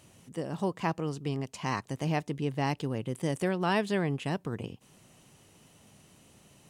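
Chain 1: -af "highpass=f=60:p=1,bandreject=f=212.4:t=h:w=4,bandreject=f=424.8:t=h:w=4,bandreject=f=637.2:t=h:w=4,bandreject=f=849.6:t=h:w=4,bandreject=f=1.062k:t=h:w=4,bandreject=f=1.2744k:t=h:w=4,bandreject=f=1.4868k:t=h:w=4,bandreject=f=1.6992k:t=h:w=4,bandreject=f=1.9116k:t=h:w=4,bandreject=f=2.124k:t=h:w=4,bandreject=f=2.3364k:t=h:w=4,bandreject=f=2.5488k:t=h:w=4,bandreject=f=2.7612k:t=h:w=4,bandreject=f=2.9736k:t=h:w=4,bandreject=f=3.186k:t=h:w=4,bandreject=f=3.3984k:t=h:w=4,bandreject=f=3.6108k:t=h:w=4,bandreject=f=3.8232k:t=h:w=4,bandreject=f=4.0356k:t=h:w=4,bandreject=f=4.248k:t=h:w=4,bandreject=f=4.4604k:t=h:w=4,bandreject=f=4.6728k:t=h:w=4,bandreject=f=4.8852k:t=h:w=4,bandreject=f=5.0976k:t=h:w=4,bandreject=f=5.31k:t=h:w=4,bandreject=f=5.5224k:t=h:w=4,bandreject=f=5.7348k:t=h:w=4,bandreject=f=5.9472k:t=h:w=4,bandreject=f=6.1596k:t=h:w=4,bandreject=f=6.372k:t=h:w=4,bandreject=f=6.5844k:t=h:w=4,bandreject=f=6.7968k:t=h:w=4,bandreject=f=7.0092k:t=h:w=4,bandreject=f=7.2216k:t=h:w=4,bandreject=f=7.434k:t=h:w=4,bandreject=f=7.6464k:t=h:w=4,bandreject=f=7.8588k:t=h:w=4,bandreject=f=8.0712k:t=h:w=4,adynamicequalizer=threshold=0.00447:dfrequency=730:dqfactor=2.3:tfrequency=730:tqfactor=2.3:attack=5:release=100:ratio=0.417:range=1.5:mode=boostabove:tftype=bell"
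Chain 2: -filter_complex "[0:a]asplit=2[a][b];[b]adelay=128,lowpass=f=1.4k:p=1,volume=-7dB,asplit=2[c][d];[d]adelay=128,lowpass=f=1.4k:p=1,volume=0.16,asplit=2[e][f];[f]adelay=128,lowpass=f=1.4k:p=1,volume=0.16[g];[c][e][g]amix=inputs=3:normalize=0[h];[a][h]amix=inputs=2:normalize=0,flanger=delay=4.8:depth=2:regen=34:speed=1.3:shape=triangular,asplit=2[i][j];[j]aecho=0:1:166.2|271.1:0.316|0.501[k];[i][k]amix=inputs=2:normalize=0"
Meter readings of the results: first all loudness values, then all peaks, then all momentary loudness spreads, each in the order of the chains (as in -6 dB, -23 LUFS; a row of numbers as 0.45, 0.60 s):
-32.0, -33.5 LUFS; -15.0, -16.5 dBFS; 11, 12 LU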